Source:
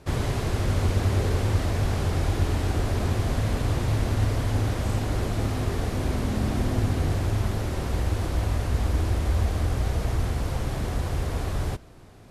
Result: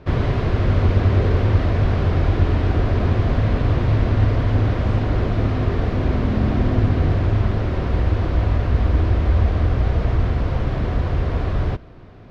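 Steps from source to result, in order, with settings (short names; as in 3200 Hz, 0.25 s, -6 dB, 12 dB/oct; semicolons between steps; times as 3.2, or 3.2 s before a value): air absorption 270 m; notch 830 Hz, Q 12; gain +7 dB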